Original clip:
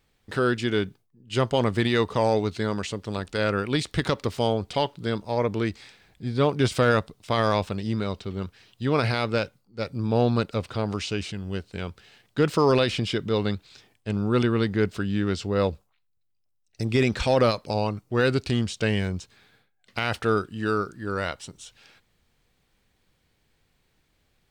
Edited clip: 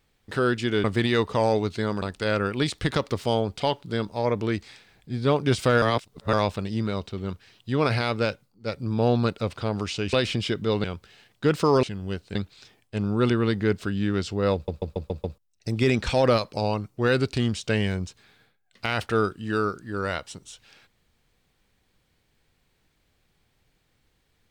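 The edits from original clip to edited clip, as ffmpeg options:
-filter_complex "[0:a]asplit=15[a][b][c][d][e][f][g][h][i][j][k][l][m][n][o];[a]atrim=end=0.842[p];[b]atrim=start=1.648:end=2.832[q];[c]atrim=start=3.148:end=6.952[r];[d]atrim=start=6.948:end=7.462,asetpts=PTS-STARTPTS,areverse[s];[e]atrim=start=7.458:end=11.262[t];[f]atrim=start=12.768:end=13.482[u];[g]atrim=start=11.778:end=12.772[v];[h]atrim=start=11.258:end=11.782[w];[i]atrim=start=13.478:end=15.812[x];[j]atrim=start=15.668:end=15.812[y];[k]atrim=start=15.668:end=15.812[z];[l]atrim=start=15.668:end=15.812[aa];[m]atrim=start=15.668:end=15.812[ab];[n]atrim=start=15.668:end=15.812[ac];[o]atrim=start=16.508[ad];[p][q]acrossfade=d=0.004:c1=hsin:c2=hsin[ae];[ae][r]acrossfade=d=0.004:c1=hsin:c2=hsin[af];[af][s]acrossfade=d=0.004:c1=hsin:c2=hsin[ag];[ag][t]acrossfade=d=0.004:c1=hsin:c2=hsin[ah];[ah][u]acrossfade=d=0.004:c1=hsin:c2=hsin[ai];[ai][v]acrossfade=d=0.004:c1=hsin:c2=hsin[aj];[aj][w]acrossfade=d=0.004:c1=hsin:c2=hsin[ak];[ak][x]acrossfade=d=0.004:c1=hsin:c2=hsin[al];[al][y]acrossfade=d=0.004:c1=hsin:c2=hsin[am];[am][z]acrossfade=d=0.004:c1=hsin:c2=hsin[an];[an][aa]acrossfade=d=0.004:c1=hsin:c2=hsin[ao];[ao][ab]acrossfade=d=0.004:c1=hsin:c2=hsin[ap];[ap][ac]acrossfade=d=0.004:c1=hsin:c2=hsin[aq];[aq][ad]acrossfade=d=0.004:c1=hsin:c2=hsin"

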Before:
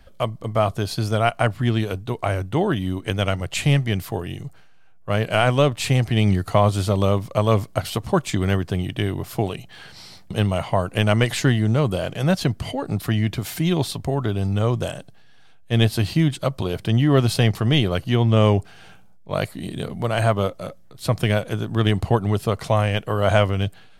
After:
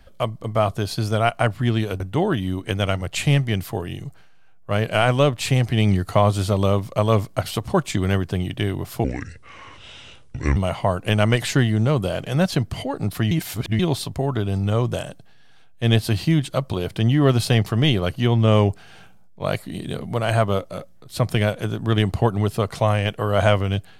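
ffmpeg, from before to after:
-filter_complex "[0:a]asplit=6[a][b][c][d][e][f];[a]atrim=end=2.002[g];[b]atrim=start=2.388:end=9.434[h];[c]atrim=start=9.43:end=10.45,asetpts=PTS-STARTPTS,asetrate=29547,aresample=44100,atrim=end_sample=67137,asetpts=PTS-STARTPTS[i];[d]atrim=start=10.446:end=13.202[j];[e]atrim=start=13.198:end=13.682,asetpts=PTS-STARTPTS,areverse[k];[f]atrim=start=13.678[l];[g][h]acrossfade=d=0.004:c1=hsin:c2=hsin[m];[m][i]acrossfade=d=0.004:c1=hsin:c2=hsin[n];[n][j]acrossfade=d=0.004:c1=hsin:c2=hsin[o];[o][k]acrossfade=d=0.004:c1=hsin:c2=hsin[p];[p][l]acrossfade=d=0.004:c1=hsin:c2=hsin"

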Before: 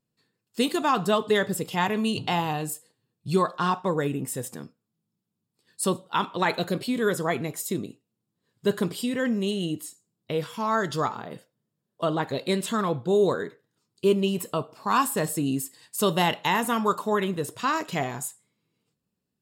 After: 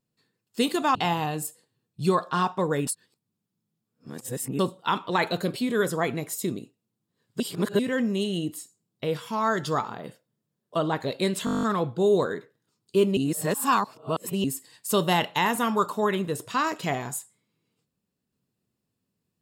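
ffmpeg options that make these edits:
-filter_complex "[0:a]asplit=17[a][b][c][d][e][f][g][h][i][j][k][l][m][n][o][p][q];[a]atrim=end=0.952[r];[b]atrim=start=2.218:end=4.142[s];[c]atrim=start=4.138:end=5.862,asetpts=PTS-STARTPTS,areverse[t];[d]atrim=start=5.858:end=8.672[u];[e]atrim=start=8.668:end=9.062,asetpts=PTS-STARTPTS,areverse[v];[f]atrim=start=9.058:end=12.742[w];[g]atrim=start=12.718:end=12.742[x];[h]atrim=start=12.718:end=12.742[y];[i]atrim=start=12.718:end=12.742[z];[j]atrim=start=12.718:end=12.742[aa];[k]atrim=start=12.718:end=12.742[ab];[l]atrim=start=12.718:end=12.742[ac];[m]atrim=start=12.718:end=12.742[ad];[n]atrim=start=12.718:end=12.742[ae];[o]atrim=start=12.718:end=14.262[af];[p]atrim=start=14.258:end=15.532,asetpts=PTS-STARTPTS,areverse[ag];[q]atrim=start=15.528[ah];[r][s]acrossfade=d=0.004:c1=hsin:c2=hsin[ai];[ai][t]acrossfade=d=0.004:c1=hsin:c2=hsin[aj];[aj][u]acrossfade=d=0.004:c1=hsin:c2=hsin[ak];[ak][v]acrossfade=d=0.004:c1=hsin:c2=hsin[al];[al][w]acrossfade=d=0.004:c1=hsin:c2=hsin[am];[am][x]acrossfade=d=0.004:c1=hsin:c2=hsin[an];[an][y]acrossfade=d=0.004:c1=hsin:c2=hsin[ao];[ao][z]acrossfade=d=0.004:c1=hsin:c2=hsin[ap];[ap][aa]acrossfade=d=0.004:c1=hsin:c2=hsin[aq];[aq][ab]acrossfade=d=0.004:c1=hsin:c2=hsin[ar];[ar][ac]acrossfade=d=0.004:c1=hsin:c2=hsin[as];[as][ad]acrossfade=d=0.004:c1=hsin:c2=hsin[at];[at][ae]acrossfade=d=0.004:c1=hsin:c2=hsin[au];[au][af]acrossfade=d=0.004:c1=hsin:c2=hsin[av];[av][ag]acrossfade=d=0.004:c1=hsin:c2=hsin[aw];[aw][ah]acrossfade=d=0.004:c1=hsin:c2=hsin"

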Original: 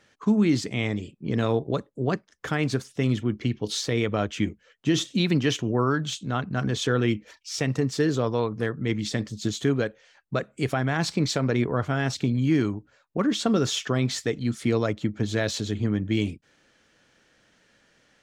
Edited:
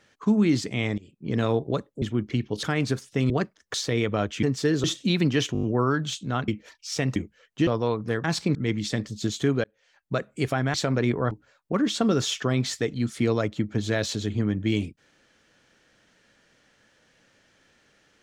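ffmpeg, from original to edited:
-filter_complex "[0:a]asplit=21[a][b][c][d][e][f][g][h][i][j][k][l][m][n][o][p][q][r][s][t][u];[a]atrim=end=0.98,asetpts=PTS-STARTPTS,afade=t=out:st=0.976:d=0.004:c=hsin:silence=0.105925[v];[b]atrim=start=0.98:end=2.022,asetpts=PTS-STARTPTS,afade=t=in:d=0.37:silence=0.105925[w];[c]atrim=start=3.128:end=3.742[x];[d]atrim=start=2.458:end=3.132[y];[e]atrim=start=2.018:end=2.462[z];[f]atrim=start=3.738:end=4.432[aa];[g]atrim=start=7.778:end=8.192[ab];[h]atrim=start=4.938:end=5.652[ac];[i]atrim=start=5.628:end=5.652[ad];[j]atrim=start=5.628:end=5.652[ae];[k]atrim=start=5.628:end=5.652[af];[l]atrim=start=5.628:end=5.652[ag];[m]atrim=start=5.628:end=6.482[ah];[n]atrim=start=7.098:end=7.782[ai];[o]atrim=start=4.428:end=4.942[aj];[p]atrim=start=8.188:end=8.762[ak];[q]atrim=start=10.948:end=11.262[al];[r]atrim=start=8.758:end=9.85,asetpts=PTS-STARTPTS,afade=t=out:st=1.088:d=0.004:c=hsin[am];[s]atrim=start=9.85:end=10.952,asetpts=PTS-STARTPTS,afade=t=in:d=0.51[an];[t]atrim=start=11.258:end=11.832[ao];[u]atrim=start=12.758[ap];[v][w]concat=n=2:v=0:a=1[aq];[aq][x]acrossfade=d=0.004:c1=hsin:c2=hsin[ar];[ar][y]acrossfade=d=0.004:c1=hsin:c2=hsin[as];[as][z]acrossfade=d=0.004:c1=hsin:c2=hsin[at];[at][aa]acrossfade=d=0.004:c1=hsin:c2=hsin[au];[au][ab]acrossfade=d=0.004:c1=hsin:c2=hsin[av];[av][ac]acrossfade=d=0.004:c1=hsin:c2=hsin[aw];[aw][ad]acrossfade=d=0.004:c1=hsin:c2=hsin[ax];[ax][ae]acrossfade=d=0.004:c1=hsin:c2=hsin[ay];[ay][af]acrossfade=d=0.004:c1=hsin:c2=hsin[az];[az][ag]acrossfade=d=0.004:c1=hsin:c2=hsin[ba];[ba][ah]acrossfade=d=0.004:c1=hsin:c2=hsin[bb];[bb][ai]acrossfade=d=0.004:c1=hsin:c2=hsin[bc];[bc][aj]acrossfade=d=0.004:c1=hsin:c2=hsin[bd];[bd][ak]acrossfade=d=0.004:c1=hsin:c2=hsin[be];[be][al]acrossfade=d=0.004:c1=hsin:c2=hsin[bf];[am][an]concat=n=2:v=0:a=1[bg];[bf][bg]acrossfade=d=0.004:c1=hsin:c2=hsin[bh];[bh][ao]acrossfade=d=0.004:c1=hsin:c2=hsin[bi];[bi][ap]acrossfade=d=0.004:c1=hsin:c2=hsin"

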